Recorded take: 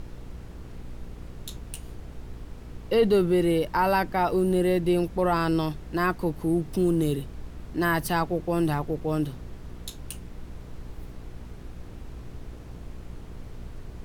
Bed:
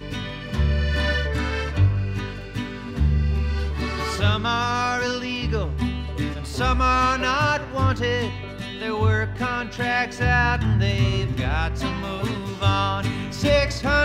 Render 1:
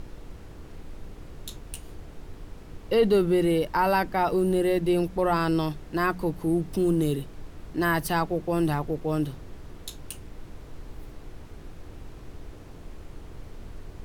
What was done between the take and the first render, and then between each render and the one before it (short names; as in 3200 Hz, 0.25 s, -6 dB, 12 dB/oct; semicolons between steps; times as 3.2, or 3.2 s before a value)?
de-hum 60 Hz, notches 4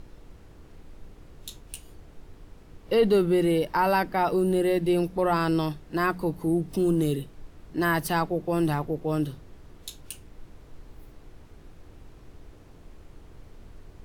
noise print and reduce 6 dB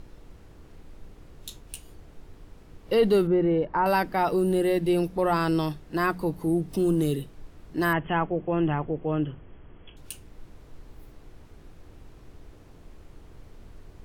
3.27–3.86 LPF 1500 Hz; 7.93–9.97 brick-wall FIR low-pass 3400 Hz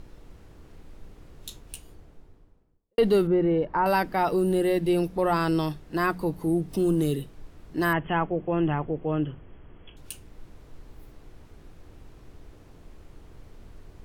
1.62–2.98 studio fade out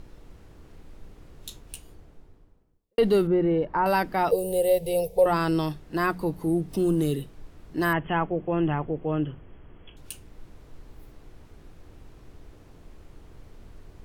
4.31–5.26 EQ curve 130 Hz 0 dB, 310 Hz -25 dB, 460 Hz +13 dB, 870 Hz -2 dB, 1400 Hz -26 dB, 2200 Hz -4 dB, 5300 Hz +1 dB, 8100 Hz +5 dB, 15000 Hz +13 dB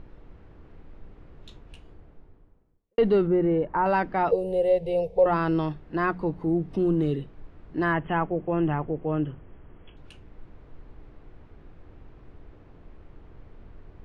LPF 2400 Hz 12 dB/oct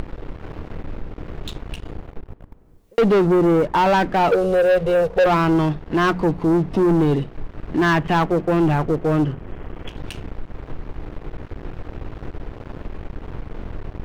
sample leveller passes 3; upward compressor, threshold -20 dBFS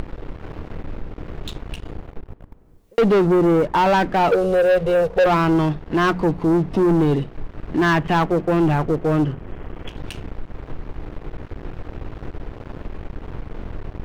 nothing audible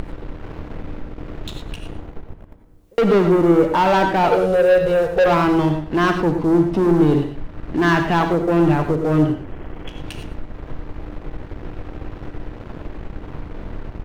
echo 0.117 s -14 dB; non-linear reverb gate 0.12 s rising, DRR 6 dB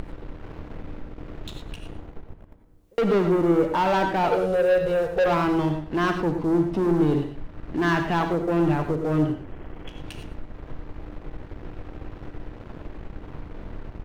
gain -6 dB